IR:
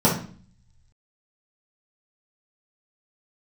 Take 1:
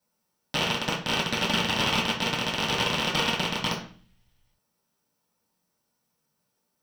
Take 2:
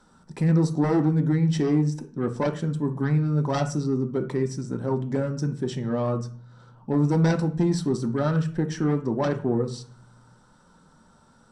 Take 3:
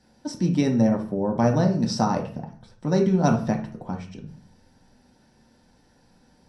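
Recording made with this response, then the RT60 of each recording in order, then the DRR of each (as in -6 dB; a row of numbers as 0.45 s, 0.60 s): 1; 0.45 s, 0.45 s, 0.45 s; -7.5 dB, 6.0 dB, 0.5 dB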